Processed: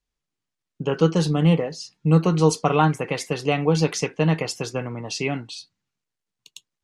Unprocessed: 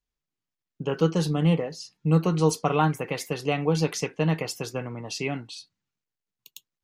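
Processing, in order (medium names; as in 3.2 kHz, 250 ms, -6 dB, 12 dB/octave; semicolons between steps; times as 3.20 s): low-pass 10 kHz 24 dB/octave; trim +4 dB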